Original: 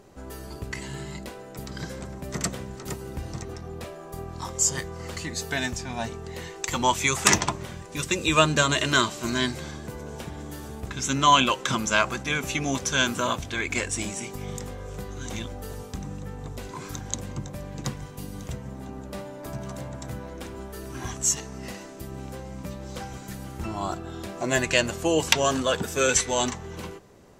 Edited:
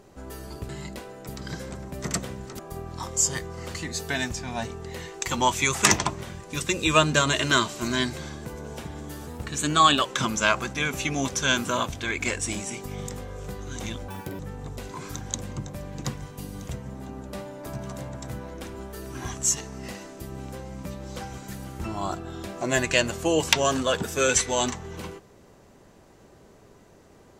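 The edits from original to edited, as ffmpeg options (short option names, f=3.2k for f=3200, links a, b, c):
-filter_complex "[0:a]asplit=7[a][b][c][d][e][f][g];[a]atrim=end=0.692[h];[b]atrim=start=0.988:end=2.892[i];[c]atrim=start=4.008:end=10.694[j];[d]atrim=start=10.69:end=11.55,asetpts=PTS-STARTPTS,asetrate=48510,aresample=44100,atrim=end_sample=34478,asetpts=PTS-STARTPTS[k];[e]atrim=start=11.546:end=15.584[l];[f]atrim=start=15.58:end=16.19,asetpts=PTS-STARTPTS,asetrate=86436,aresample=44100[m];[g]atrim=start=16.186[n];[h][i]acrossfade=d=0.004:c1=hsin:c2=hsin[o];[o][j]acrossfade=d=0.004:c1=hsin:c2=hsin[p];[p][k]acrossfade=d=0.004:c1=hsin:c2=hsin[q];[q][l]acrossfade=d=0.004:c1=hsin:c2=hsin[r];[r][m]acrossfade=d=0.004:c1=hsin:c2=hsin[s];[s][n]acrossfade=d=0.004:c1=hsin:c2=hsin"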